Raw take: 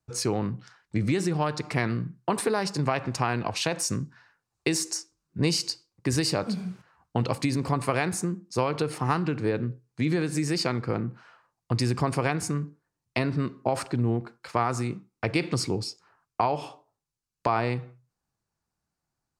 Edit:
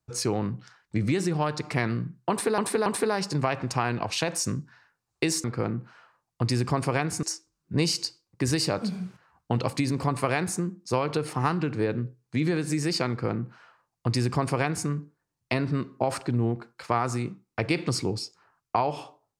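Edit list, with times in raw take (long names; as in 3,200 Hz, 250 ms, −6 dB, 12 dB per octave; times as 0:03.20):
0:02.30–0:02.58: repeat, 3 plays
0:10.74–0:12.53: duplicate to 0:04.88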